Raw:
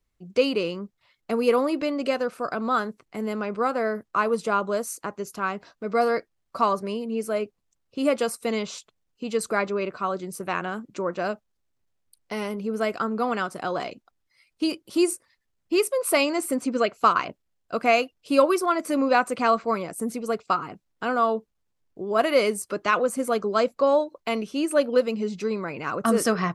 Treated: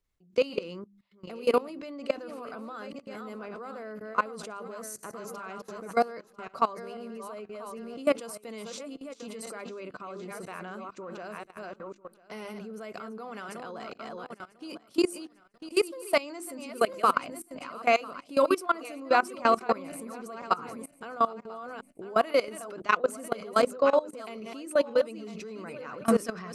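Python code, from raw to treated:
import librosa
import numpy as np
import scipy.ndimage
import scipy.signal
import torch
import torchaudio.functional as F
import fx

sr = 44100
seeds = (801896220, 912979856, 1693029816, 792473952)

y = fx.reverse_delay_fb(x, sr, ms=498, feedback_pct=44, wet_db=-8)
y = fx.hum_notches(y, sr, base_hz=50, count=7)
y = fx.level_steps(y, sr, step_db=20)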